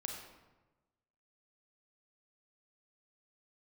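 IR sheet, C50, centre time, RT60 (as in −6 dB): 3.0 dB, 47 ms, 1.1 s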